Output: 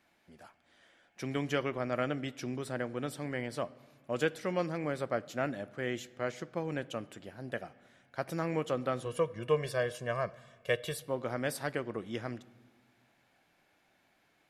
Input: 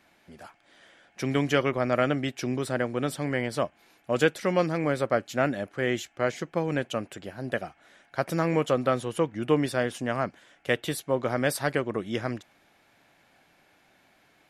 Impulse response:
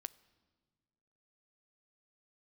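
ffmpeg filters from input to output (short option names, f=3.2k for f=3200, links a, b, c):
-filter_complex "[0:a]asettb=1/sr,asplit=3[a][b][c];[a]atrim=end=9.054[d];[b]atrim=start=9.05:end=10.98,asetpts=PTS-STARTPTS,afade=t=in:d=0.004:c=qsin,afade=t=out:st=1.926:d=0.004:c=qsin,aecho=1:1:1.8:0.89,atrim=end_sample=85113[e];[c]atrim=start=10.976[f];[d][e]acrossfade=d=0.004:c1=hsin:c2=qsin[g];[g][f]acrossfade=d=0.004:c1=qsin:c2=hsin[h];[1:a]atrim=start_sample=2205[i];[h][i]afir=irnorm=-1:irlink=0,volume=-4dB"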